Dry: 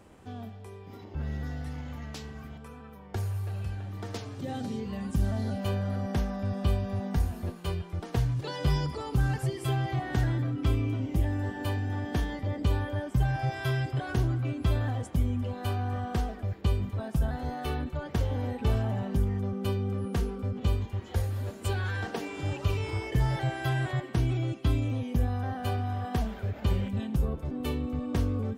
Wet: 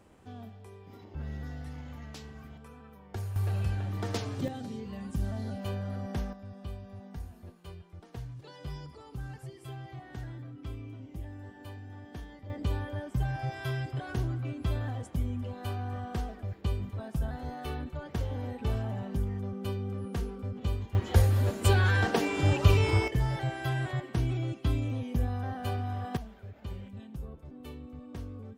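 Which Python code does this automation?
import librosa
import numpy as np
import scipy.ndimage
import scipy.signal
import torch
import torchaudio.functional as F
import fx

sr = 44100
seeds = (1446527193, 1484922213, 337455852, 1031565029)

y = fx.gain(x, sr, db=fx.steps((0.0, -4.5), (3.36, 4.0), (4.48, -5.0), (6.33, -14.0), (12.5, -4.5), (20.95, 7.0), (23.08, -2.5), (26.17, -13.0)))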